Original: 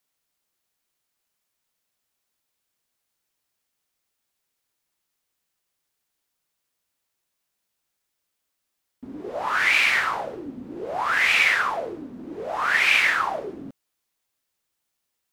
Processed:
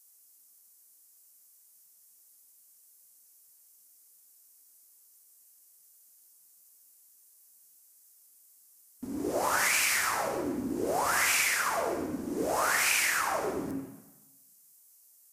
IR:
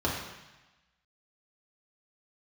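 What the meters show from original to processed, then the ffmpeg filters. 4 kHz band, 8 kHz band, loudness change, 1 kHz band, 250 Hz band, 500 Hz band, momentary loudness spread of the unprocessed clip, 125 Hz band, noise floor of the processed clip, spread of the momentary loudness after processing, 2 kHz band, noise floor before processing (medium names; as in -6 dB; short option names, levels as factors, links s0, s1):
-6.5 dB, +9.5 dB, -7.5 dB, -4.5 dB, +2.5 dB, 0.0 dB, 20 LU, +1.5 dB, -61 dBFS, 12 LU, -9.0 dB, -79 dBFS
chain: -filter_complex "[0:a]acompressor=threshold=0.0447:ratio=6,aexciter=amount=5.4:drive=8.5:freq=5200,asplit=2[s0][s1];[1:a]atrim=start_sample=2205,adelay=88[s2];[s1][s2]afir=irnorm=-1:irlink=0,volume=0.168[s3];[s0][s3]amix=inputs=2:normalize=0" -ar 44100 -c:a libvorbis -b:a 48k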